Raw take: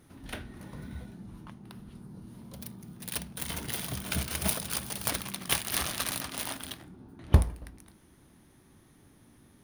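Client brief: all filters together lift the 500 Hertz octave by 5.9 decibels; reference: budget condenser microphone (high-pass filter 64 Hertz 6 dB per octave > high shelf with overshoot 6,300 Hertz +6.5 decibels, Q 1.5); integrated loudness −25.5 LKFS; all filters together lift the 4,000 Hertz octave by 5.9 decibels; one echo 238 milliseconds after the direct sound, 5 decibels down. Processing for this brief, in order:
high-pass filter 64 Hz 6 dB per octave
parametric band 500 Hz +7.5 dB
parametric band 4,000 Hz +9 dB
high shelf with overshoot 6,300 Hz +6.5 dB, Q 1.5
single-tap delay 238 ms −5 dB
level −0.5 dB

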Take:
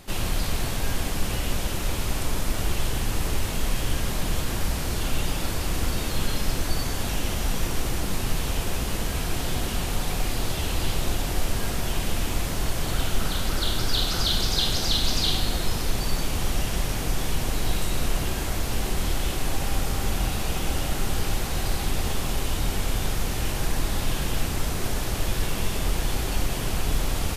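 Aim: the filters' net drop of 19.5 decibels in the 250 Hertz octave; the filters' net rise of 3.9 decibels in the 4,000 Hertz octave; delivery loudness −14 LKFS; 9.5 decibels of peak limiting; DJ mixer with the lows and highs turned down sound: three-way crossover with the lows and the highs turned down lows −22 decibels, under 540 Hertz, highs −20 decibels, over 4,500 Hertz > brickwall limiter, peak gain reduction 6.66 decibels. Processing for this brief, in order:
parametric band 250 Hz −3 dB
parametric band 4,000 Hz +8.5 dB
brickwall limiter −13 dBFS
three-way crossover with the lows and the highs turned down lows −22 dB, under 540 Hz, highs −20 dB, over 4,500 Hz
level +17 dB
brickwall limiter −5.5 dBFS

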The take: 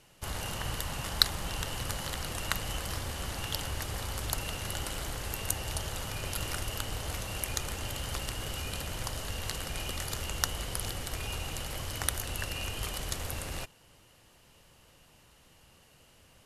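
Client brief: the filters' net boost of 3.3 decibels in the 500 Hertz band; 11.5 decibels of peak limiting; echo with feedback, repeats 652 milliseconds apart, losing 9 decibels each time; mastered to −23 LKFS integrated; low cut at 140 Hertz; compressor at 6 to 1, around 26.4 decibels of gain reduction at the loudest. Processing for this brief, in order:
high-pass filter 140 Hz
parametric band 500 Hz +4 dB
downward compressor 6 to 1, threshold −50 dBFS
brickwall limiter −38 dBFS
repeating echo 652 ms, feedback 35%, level −9 dB
level +28.5 dB

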